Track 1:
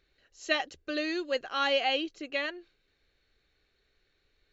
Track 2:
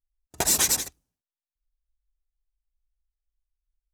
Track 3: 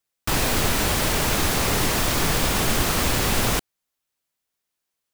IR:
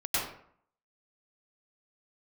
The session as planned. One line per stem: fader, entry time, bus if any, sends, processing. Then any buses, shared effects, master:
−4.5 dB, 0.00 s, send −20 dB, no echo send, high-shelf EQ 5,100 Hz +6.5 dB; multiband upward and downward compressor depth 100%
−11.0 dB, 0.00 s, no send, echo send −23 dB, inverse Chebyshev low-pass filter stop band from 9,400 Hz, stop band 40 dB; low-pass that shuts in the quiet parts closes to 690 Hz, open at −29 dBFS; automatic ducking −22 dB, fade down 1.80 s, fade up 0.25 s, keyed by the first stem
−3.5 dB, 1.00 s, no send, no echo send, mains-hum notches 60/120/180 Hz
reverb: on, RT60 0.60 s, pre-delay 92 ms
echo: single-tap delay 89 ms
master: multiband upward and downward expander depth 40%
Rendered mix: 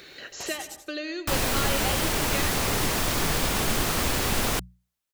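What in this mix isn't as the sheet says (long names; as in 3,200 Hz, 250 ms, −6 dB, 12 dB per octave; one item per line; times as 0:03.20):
stem 2: missing inverse Chebyshev low-pass filter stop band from 9,400 Hz, stop band 40 dB
master: missing multiband upward and downward expander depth 40%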